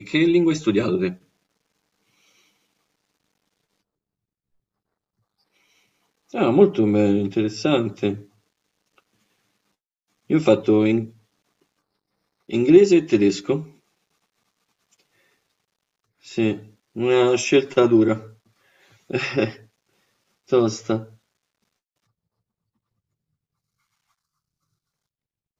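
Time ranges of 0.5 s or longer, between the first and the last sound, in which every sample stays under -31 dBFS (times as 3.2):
1.13–6.34
8.16–10.3
11.06–12.49
13.63–16.28
18.2–19.1
19.51–20.52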